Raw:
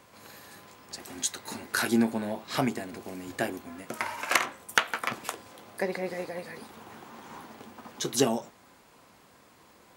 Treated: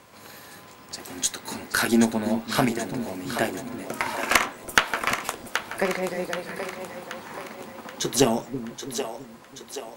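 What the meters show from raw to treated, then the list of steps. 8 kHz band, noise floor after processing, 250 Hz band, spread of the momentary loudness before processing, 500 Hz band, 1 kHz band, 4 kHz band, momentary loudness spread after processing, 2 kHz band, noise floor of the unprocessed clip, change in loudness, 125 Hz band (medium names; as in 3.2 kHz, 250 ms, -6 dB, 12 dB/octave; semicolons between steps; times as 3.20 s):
+5.5 dB, -48 dBFS, +5.5 dB, 20 LU, +5.5 dB, +5.5 dB, +5.5 dB, 17 LU, +5.5 dB, -58 dBFS, +4.5 dB, +5.5 dB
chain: Chebyshev shaper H 4 -21 dB, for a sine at -6.5 dBFS; two-band feedback delay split 350 Hz, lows 331 ms, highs 778 ms, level -8.5 dB; trim +4.5 dB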